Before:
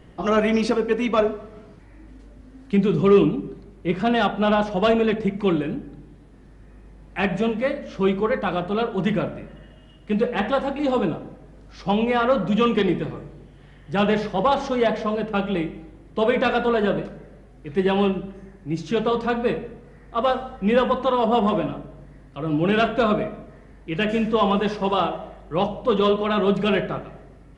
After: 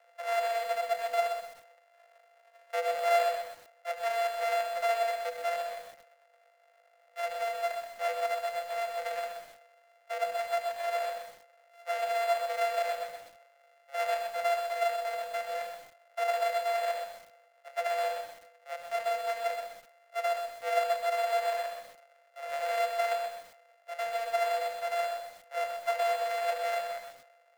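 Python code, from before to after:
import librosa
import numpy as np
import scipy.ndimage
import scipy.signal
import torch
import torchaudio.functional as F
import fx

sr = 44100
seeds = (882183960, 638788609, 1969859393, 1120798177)

p1 = np.r_[np.sort(x[:len(x) // 64 * 64].reshape(-1, 64), axis=1).ravel(), x[len(x) // 64 * 64:]]
p2 = scipy.signal.sosfilt(scipy.signal.cheby1(6, 9, 480.0, 'highpass', fs=sr, output='sos'), p1)
p3 = fx.high_shelf(p2, sr, hz=2200.0, db=-5.0)
p4 = p3 + fx.echo_single(p3, sr, ms=73, db=-15.0, dry=0)
p5 = fx.echo_crushed(p4, sr, ms=126, feedback_pct=35, bits=7, wet_db=-6.0)
y = F.gain(torch.from_numpy(p5), -7.0).numpy()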